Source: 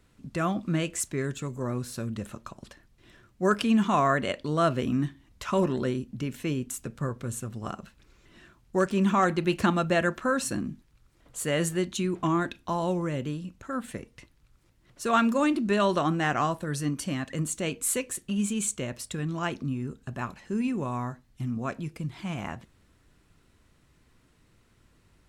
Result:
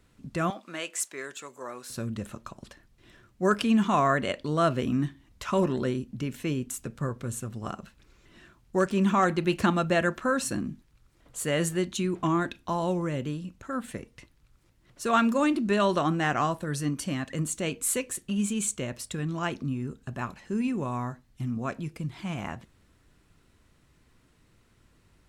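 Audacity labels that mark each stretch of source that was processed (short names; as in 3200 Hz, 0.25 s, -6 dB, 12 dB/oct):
0.500000	1.900000	HPF 610 Hz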